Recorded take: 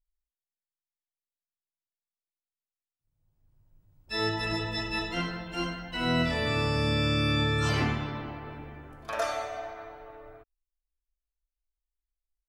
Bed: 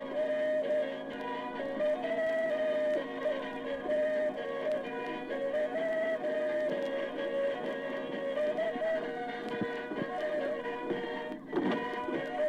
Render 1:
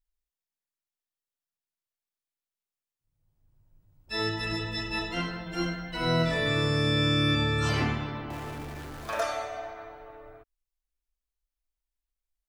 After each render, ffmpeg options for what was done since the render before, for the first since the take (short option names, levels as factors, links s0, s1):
-filter_complex "[0:a]asettb=1/sr,asplit=3[s0][s1][s2];[s0]atrim=end=4.224[s3];[s1]atrim=start=4.22:end=4.91,asetpts=PTS-STARTPTS,afade=t=in:d=0.004:c=qsin,afade=t=out:st=0.686:d=0.004:c=qsin,equalizer=f=760:w=1.5:g=-6[s4];[s2]atrim=start=4.906[s5];[s3][s4]acrossfade=d=0.004:c1=hsin:c2=qsin[s6];[s6][s5]acrossfade=d=0.004:c1=qsin:c2=hsin,asettb=1/sr,asplit=3[s7][s8][s9];[s7]atrim=end=5.464[s10];[s8]atrim=start=5.46:end=7.35,asetpts=PTS-STARTPTS,afade=t=in:d=0.004:c=qsin,afade=t=out:st=1.886:d=0.004:c=qsin,aecho=1:1:6.3:0.65,atrim=end_sample=83349[s11];[s9]atrim=start=7.346[s12];[s10][s11]acrossfade=d=0.004:c1=hsin:c2=qsin[s13];[s13][s12]acrossfade=d=0.004:c1=qsin:c2=hsin,asettb=1/sr,asplit=3[s14][s15][s16];[s14]atrim=end=8.304[s17];[s15]atrim=start=8.3:end=9.22,asetpts=PTS-STARTPTS,afade=t=in:d=0.004:c=qsin,afade=t=out:st=0.916:d=0.004:c=qsin,aeval=exprs='val(0)+0.5*0.0112*sgn(val(0))':c=same[s18];[s16]atrim=start=9.216[s19];[s17][s18]acrossfade=d=0.004:c1=hsin:c2=qsin[s20];[s20][s19]acrossfade=d=0.004:c1=qsin:c2=hsin"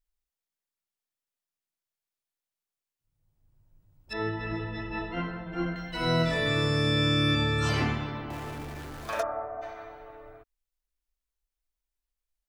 -filter_complex "[0:a]asettb=1/sr,asplit=3[s0][s1][s2];[s0]atrim=end=4.134[s3];[s1]atrim=start=4.13:end=5.76,asetpts=PTS-STARTPTS,afade=t=in:d=0.004:c=qsin,afade=t=out:st=1.626:d=0.004:c=qsin,lowpass=1900[s4];[s2]atrim=start=5.756[s5];[s3][s4]acrossfade=d=0.004:c1=hsin:c2=qsin[s6];[s6][s5]acrossfade=d=0.004:c1=qsin:c2=hsin,asplit=3[s7][s8][s9];[s7]afade=t=out:st=9.21:d=0.02[s10];[s8]lowpass=f=1300:w=0.5412,lowpass=f=1300:w=1.3066,afade=t=in:st=9.21:d=0.02,afade=t=out:st=9.61:d=0.02[s11];[s9]afade=t=in:st=9.61:d=0.02[s12];[s10][s11][s12]amix=inputs=3:normalize=0"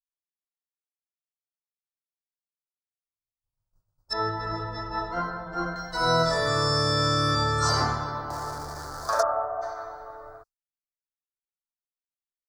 -af "agate=range=0.0224:threshold=0.00316:ratio=3:detection=peak,firequalizer=gain_entry='entry(120,0);entry(230,-7);entry(540,5);entry(1300,11);entry(2600,-19);entry(4600,13);entry(12000,4)':delay=0.05:min_phase=1"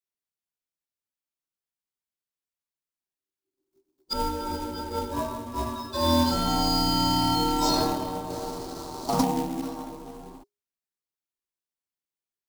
-af "acrusher=bits=3:mode=log:mix=0:aa=0.000001,afreqshift=-410"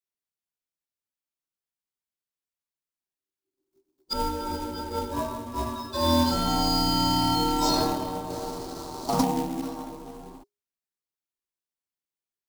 -af anull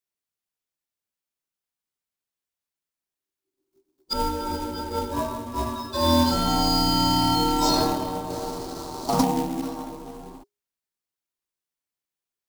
-af "volume=1.33"